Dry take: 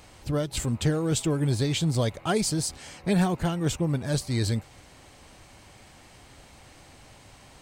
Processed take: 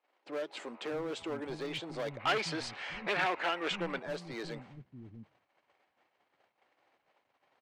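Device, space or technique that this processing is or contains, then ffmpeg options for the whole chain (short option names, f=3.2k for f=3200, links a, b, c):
walkie-talkie: -filter_complex "[0:a]highpass=400,lowpass=2.4k,asoftclip=type=hard:threshold=-29.5dB,agate=range=-25dB:threshold=-53dB:ratio=16:detection=peak,asplit=3[a][b][c];[a]afade=t=out:st=2.19:d=0.02[d];[b]equalizer=f=2.4k:t=o:w=2.7:g=12,afade=t=in:st=2.19:d=0.02,afade=t=out:st=3.98:d=0.02[e];[c]afade=t=in:st=3.98:d=0.02[f];[d][e][f]amix=inputs=3:normalize=0,acrossover=split=230[g][h];[g]adelay=640[i];[i][h]amix=inputs=2:normalize=0,volume=-2.5dB"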